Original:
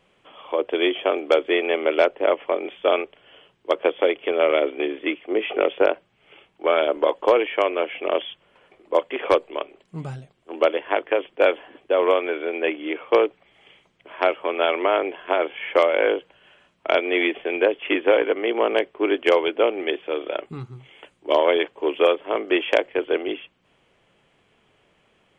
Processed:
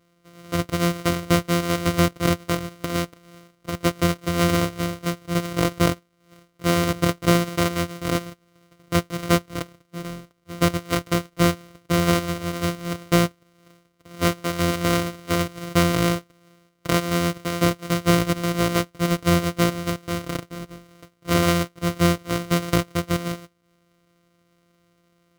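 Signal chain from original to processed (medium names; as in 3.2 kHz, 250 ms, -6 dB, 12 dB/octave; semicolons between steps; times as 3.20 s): sorted samples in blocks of 256 samples; 2.80–3.76 s: compressor with a negative ratio -22 dBFS, ratio -0.5; comb of notches 850 Hz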